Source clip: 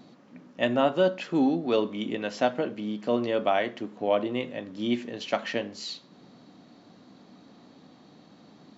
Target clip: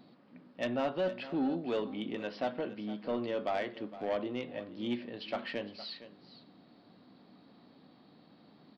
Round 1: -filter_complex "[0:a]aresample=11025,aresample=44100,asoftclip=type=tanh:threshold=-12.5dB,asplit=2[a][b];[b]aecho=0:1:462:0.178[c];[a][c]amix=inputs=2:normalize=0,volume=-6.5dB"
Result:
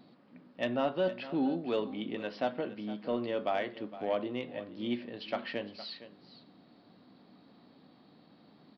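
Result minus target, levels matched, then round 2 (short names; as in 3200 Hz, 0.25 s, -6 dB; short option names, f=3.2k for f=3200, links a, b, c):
soft clip: distortion -8 dB
-filter_complex "[0:a]aresample=11025,aresample=44100,asoftclip=type=tanh:threshold=-18.5dB,asplit=2[a][b];[b]aecho=0:1:462:0.178[c];[a][c]amix=inputs=2:normalize=0,volume=-6.5dB"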